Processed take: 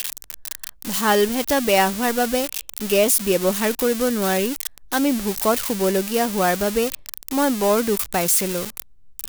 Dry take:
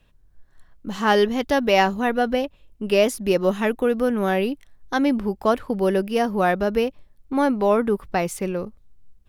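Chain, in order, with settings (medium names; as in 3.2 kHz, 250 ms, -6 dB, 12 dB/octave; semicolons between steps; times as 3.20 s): zero-crossing glitches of -13 dBFS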